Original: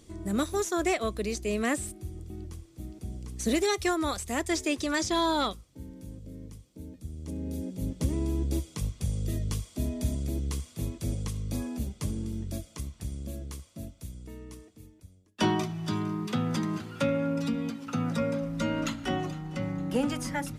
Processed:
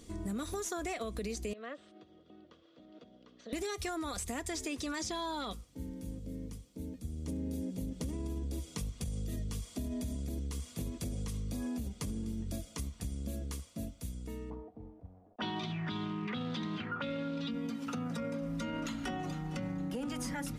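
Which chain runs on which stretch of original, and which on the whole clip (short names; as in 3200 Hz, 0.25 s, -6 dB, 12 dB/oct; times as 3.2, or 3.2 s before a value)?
1.53–3.53 compressor 4:1, threshold -43 dBFS + speaker cabinet 380–3700 Hz, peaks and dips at 390 Hz -4 dB, 580 Hz +9 dB, 830 Hz -7 dB, 1300 Hz +4 dB, 2300 Hz -8 dB, 3300 Hz +4 dB
14.5–17.51 companded quantiser 6-bit + envelope low-pass 650–3700 Hz up, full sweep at -26.5 dBFS
whole clip: comb 4.2 ms, depth 33%; limiter -26.5 dBFS; compressor, threshold -35 dBFS; gain +1 dB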